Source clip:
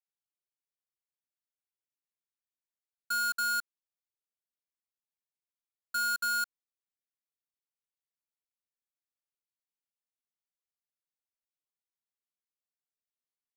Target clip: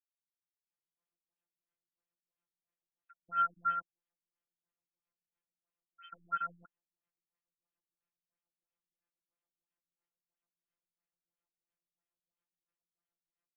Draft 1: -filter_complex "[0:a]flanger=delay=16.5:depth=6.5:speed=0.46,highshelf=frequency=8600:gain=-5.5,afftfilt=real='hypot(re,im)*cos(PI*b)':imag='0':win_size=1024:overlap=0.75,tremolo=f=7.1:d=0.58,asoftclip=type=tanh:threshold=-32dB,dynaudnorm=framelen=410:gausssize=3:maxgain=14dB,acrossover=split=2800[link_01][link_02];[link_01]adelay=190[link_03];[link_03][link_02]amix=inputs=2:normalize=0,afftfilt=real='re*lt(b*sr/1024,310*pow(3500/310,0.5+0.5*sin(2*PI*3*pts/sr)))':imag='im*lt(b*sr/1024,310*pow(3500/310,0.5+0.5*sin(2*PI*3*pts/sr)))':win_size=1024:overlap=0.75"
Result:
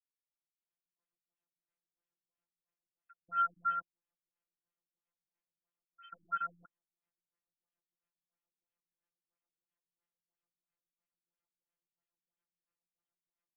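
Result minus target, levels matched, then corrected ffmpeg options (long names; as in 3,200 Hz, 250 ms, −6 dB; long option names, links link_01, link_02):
soft clipping: distortion +13 dB
-filter_complex "[0:a]flanger=delay=16.5:depth=6.5:speed=0.46,highshelf=frequency=8600:gain=-5.5,afftfilt=real='hypot(re,im)*cos(PI*b)':imag='0':win_size=1024:overlap=0.75,tremolo=f=7.1:d=0.58,asoftclip=type=tanh:threshold=-23.5dB,dynaudnorm=framelen=410:gausssize=3:maxgain=14dB,acrossover=split=2800[link_01][link_02];[link_01]adelay=190[link_03];[link_03][link_02]amix=inputs=2:normalize=0,afftfilt=real='re*lt(b*sr/1024,310*pow(3500/310,0.5+0.5*sin(2*PI*3*pts/sr)))':imag='im*lt(b*sr/1024,310*pow(3500/310,0.5+0.5*sin(2*PI*3*pts/sr)))':win_size=1024:overlap=0.75"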